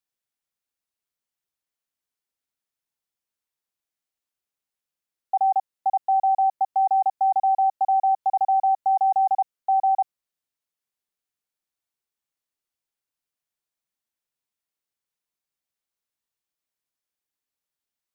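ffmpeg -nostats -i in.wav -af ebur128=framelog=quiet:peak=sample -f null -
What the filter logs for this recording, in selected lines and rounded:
Integrated loudness:
  I:         -22.2 LUFS
  Threshold: -32.2 LUFS
Loudness range:
  LRA:         9.7 LU
  Threshold: -44.0 LUFS
  LRA low:   -31.2 LUFS
  LRA high:  -21.6 LUFS
Sample peak:
  Peak:      -15.7 dBFS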